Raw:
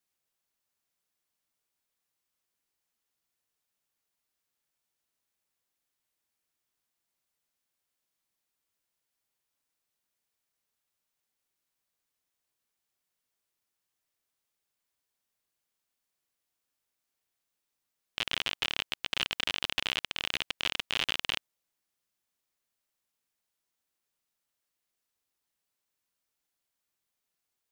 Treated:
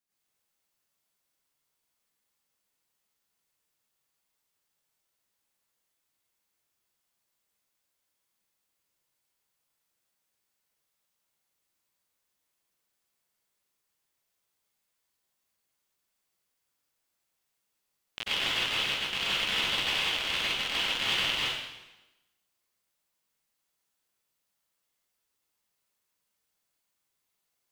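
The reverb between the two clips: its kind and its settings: plate-style reverb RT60 1 s, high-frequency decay 0.95×, pre-delay 80 ms, DRR -9.5 dB; gain -5.5 dB

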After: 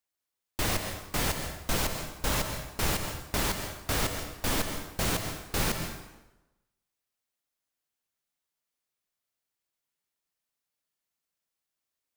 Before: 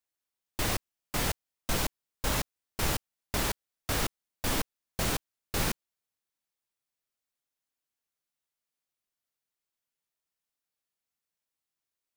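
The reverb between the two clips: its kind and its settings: plate-style reverb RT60 1 s, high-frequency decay 0.8×, pre-delay 0.115 s, DRR 5.5 dB; gain +1 dB

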